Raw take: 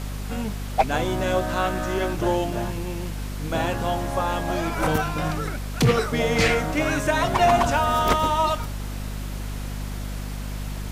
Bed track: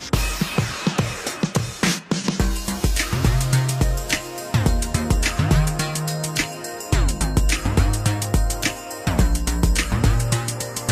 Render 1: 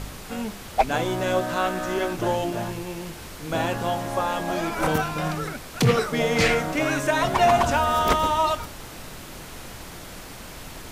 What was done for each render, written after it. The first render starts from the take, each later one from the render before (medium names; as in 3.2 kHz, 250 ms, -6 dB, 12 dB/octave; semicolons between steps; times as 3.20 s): de-hum 50 Hz, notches 7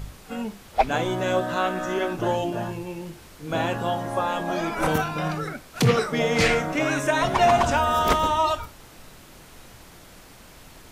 noise print and reduce 8 dB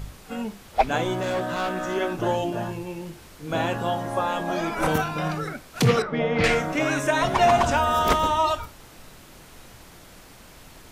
1.13–1.96 s: overload inside the chain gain 22.5 dB; 6.02–6.44 s: distance through air 340 m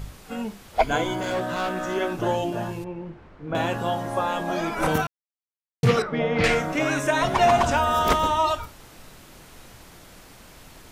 0.79–1.32 s: rippled EQ curve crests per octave 1.8, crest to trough 9 dB; 2.84–3.55 s: low-pass 1.6 kHz; 5.07–5.83 s: mute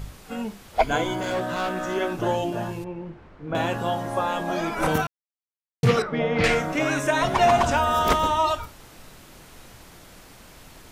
no audible change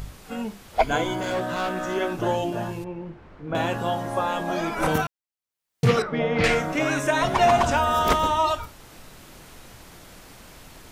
upward compressor, threshold -41 dBFS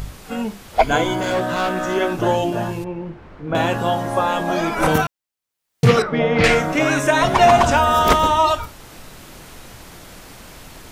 trim +6 dB; peak limiter -3 dBFS, peak gain reduction 1.5 dB